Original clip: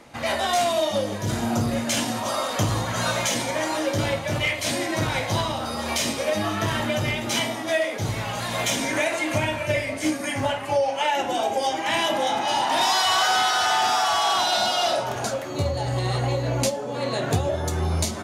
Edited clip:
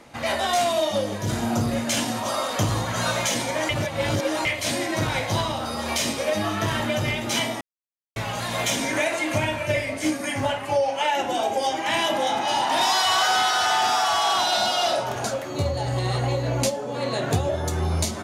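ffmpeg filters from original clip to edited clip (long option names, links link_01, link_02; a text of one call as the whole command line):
ffmpeg -i in.wav -filter_complex "[0:a]asplit=5[link_01][link_02][link_03][link_04][link_05];[link_01]atrim=end=3.692[link_06];[link_02]atrim=start=3.688:end=4.452,asetpts=PTS-STARTPTS,areverse[link_07];[link_03]atrim=start=4.448:end=7.61,asetpts=PTS-STARTPTS,afade=type=out:start_time=3.158:duration=0.004:curve=hsin[link_08];[link_04]atrim=start=7.61:end=8.16,asetpts=PTS-STARTPTS,volume=0[link_09];[link_05]atrim=start=8.16,asetpts=PTS-STARTPTS,afade=type=in:duration=0.004:curve=hsin[link_10];[link_06][link_07]acrossfade=duration=0.004:curve1=hsin:curve2=hsin[link_11];[link_08][link_09][link_10]concat=n=3:v=0:a=1[link_12];[link_11][link_12]acrossfade=duration=0.004:curve1=hsin:curve2=hsin" out.wav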